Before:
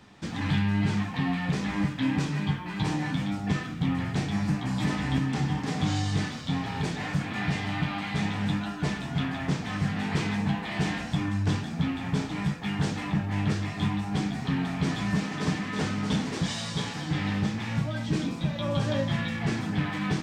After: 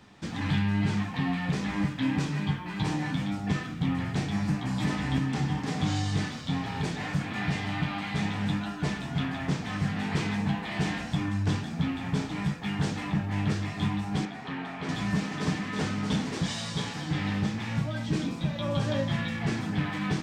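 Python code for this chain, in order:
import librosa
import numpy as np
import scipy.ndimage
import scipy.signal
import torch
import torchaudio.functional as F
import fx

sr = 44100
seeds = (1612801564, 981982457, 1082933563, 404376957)

y = fx.bass_treble(x, sr, bass_db=-14, treble_db=-11, at=(14.25, 14.89))
y = y * 10.0 ** (-1.0 / 20.0)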